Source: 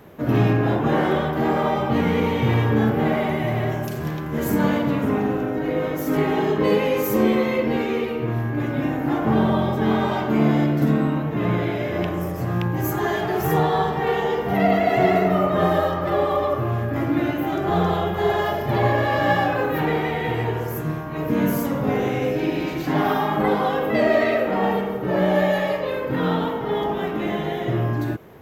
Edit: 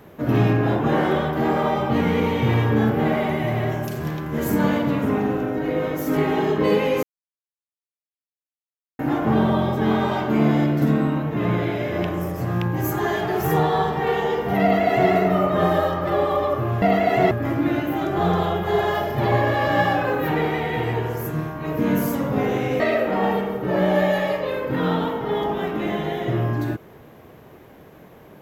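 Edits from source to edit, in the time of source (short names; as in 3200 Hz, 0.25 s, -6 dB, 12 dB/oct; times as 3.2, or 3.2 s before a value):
7.03–8.99 mute
14.62–15.11 copy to 16.82
22.31–24.2 cut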